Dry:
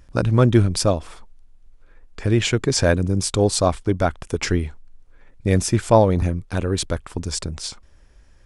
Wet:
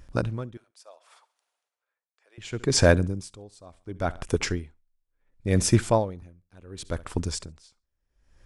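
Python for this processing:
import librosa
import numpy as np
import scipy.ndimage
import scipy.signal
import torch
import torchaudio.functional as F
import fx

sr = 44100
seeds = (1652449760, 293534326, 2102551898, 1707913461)

y = fx.highpass(x, sr, hz=590.0, slope=24, at=(0.57, 2.38))
y = fx.echo_feedback(y, sr, ms=68, feedback_pct=37, wet_db=-23.0)
y = y * 10.0 ** (-31 * (0.5 - 0.5 * np.cos(2.0 * np.pi * 0.7 * np.arange(len(y)) / sr)) / 20.0)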